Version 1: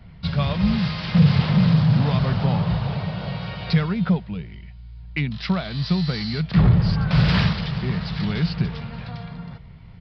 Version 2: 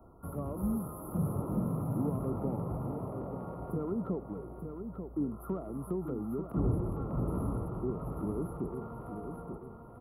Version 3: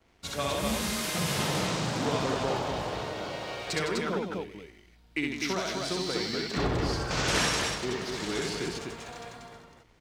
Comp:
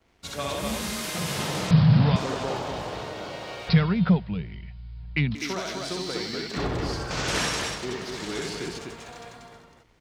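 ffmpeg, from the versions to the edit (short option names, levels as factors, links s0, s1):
-filter_complex "[0:a]asplit=2[s0][s1];[2:a]asplit=3[s2][s3][s4];[s2]atrim=end=1.712[s5];[s0]atrim=start=1.708:end=2.162[s6];[s3]atrim=start=2.158:end=3.692[s7];[s1]atrim=start=3.688:end=5.352[s8];[s4]atrim=start=5.348[s9];[s5][s6]acrossfade=d=0.004:c1=hsin:c2=hsin[s10];[s10][s7]acrossfade=d=0.004:c1=hsin:c2=hsin[s11];[s11][s8]acrossfade=d=0.004:c1=hsin:c2=hsin[s12];[s12][s9]acrossfade=d=0.004:c1=hsin:c2=hsin"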